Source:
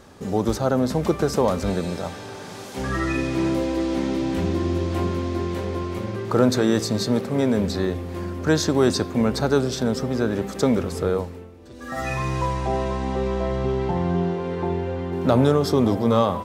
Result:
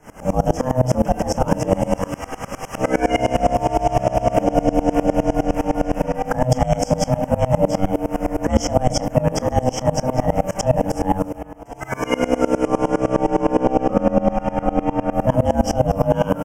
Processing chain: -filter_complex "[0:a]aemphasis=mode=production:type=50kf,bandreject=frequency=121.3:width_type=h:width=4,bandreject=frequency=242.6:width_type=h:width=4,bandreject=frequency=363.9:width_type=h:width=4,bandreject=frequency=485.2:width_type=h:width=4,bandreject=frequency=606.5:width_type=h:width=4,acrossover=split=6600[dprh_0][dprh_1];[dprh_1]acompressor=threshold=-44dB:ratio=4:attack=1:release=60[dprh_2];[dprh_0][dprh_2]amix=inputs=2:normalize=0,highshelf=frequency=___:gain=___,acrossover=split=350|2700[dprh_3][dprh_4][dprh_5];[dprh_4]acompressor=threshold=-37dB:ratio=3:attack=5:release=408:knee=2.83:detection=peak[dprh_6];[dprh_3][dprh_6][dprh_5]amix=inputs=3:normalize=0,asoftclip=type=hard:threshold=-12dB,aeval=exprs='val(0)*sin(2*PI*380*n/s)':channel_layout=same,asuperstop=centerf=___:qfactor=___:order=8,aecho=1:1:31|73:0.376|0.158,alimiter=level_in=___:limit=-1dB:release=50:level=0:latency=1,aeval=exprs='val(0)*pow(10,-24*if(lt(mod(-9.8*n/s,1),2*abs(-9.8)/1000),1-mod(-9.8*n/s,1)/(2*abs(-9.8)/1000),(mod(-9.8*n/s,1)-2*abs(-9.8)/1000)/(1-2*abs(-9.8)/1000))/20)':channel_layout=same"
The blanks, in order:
3600, -10.5, 4000, 1.9, 18dB